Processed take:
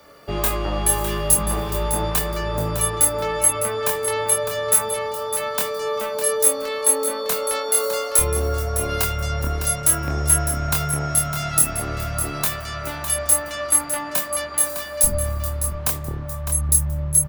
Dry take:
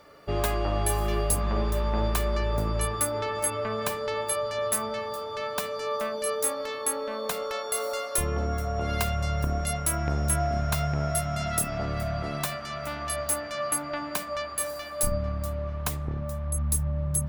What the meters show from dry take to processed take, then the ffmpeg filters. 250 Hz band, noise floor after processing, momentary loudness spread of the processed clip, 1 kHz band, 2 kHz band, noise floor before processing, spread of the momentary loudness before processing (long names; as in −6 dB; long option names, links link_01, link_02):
+2.5 dB, −31 dBFS, 8 LU, +4.0 dB, +5.5 dB, −36 dBFS, 5 LU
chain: -filter_complex "[0:a]asplit=2[link_01][link_02];[link_02]adelay=25,volume=-3.5dB[link_03];[link_01][link_03]amix=inputs=2:normalize=0,aecho=1:1:606:0.335,acrossover=split=100|770|2400[link_04][link_05][link_06][link_07];[link_06]volume=26dB,asoftclip=hard,volume=-26dB[link_08];[link_04][link_05][link_08][link_07]amix=inputs=4:normalize=0,crystalizer=i=1:c=0,volume=2.5dB"